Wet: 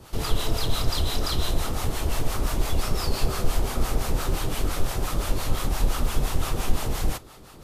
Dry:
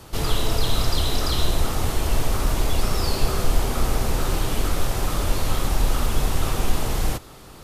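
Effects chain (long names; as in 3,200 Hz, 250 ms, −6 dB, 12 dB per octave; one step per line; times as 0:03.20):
two-band tremolo in antiphase 5.8 Hz, depth 70%, crossover 640 Hz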